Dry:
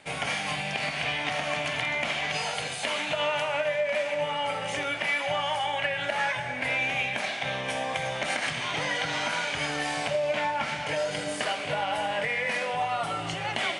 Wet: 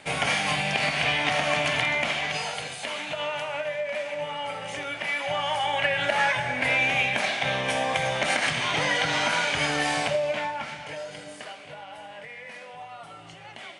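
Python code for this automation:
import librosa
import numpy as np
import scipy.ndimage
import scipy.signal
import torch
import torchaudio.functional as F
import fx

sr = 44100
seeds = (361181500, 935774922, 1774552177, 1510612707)

y = fx.gain(x, sr, db=fx.line((1.75, 5.0), (2.8, -3.0), (4.87, -3.0), (5.94, 4.5), (9.96, 4.5), (10.77, -6.0), (11.83, -13.0)))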